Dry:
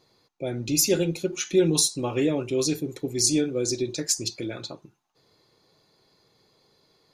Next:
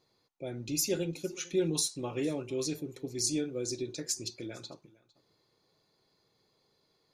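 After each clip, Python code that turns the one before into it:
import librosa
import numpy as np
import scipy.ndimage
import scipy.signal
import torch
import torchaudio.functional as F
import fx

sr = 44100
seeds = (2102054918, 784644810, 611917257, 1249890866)

y = x + 10.0 ** (-23.0 / 20.0) * np.pad(x, (int(455 * sr / 1000.0), 0))[:len(x)]
y = y * 10.0 ** (-9.0 / 20.0)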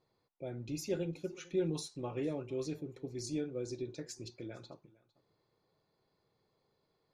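y = fx.lowpass(x, sr, hz=1300.0, slope=6)
y = fx.peak_eq(y, sr, hz=280.0, db=-3.5, octaves=1.3)
y = y * 10.0 ** (-1.0 / 20.0)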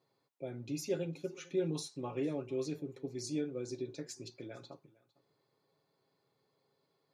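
y = scipy.signal.sosfilt(scipy.signal.butter(2, 140.0, 'highpass', fs=sr, output='sos'), x)
y = y + 0.37 * np.pad(y, (int(7.3 * sr / 1000.0), 0))[:len(y)]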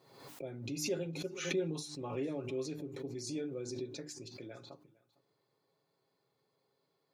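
y = fx.hum_notches(x, sr, base_hz=50, count=6)
y = fx.pre_swell(y, sr, db_per_s=65.0)
y = y * 10.0 ** (-1.5 / 20.0)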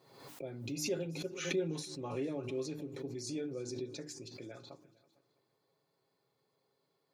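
y = fx.echo_feedback(x, sr, ms=328, feedback_pct=36, wet_db=-22)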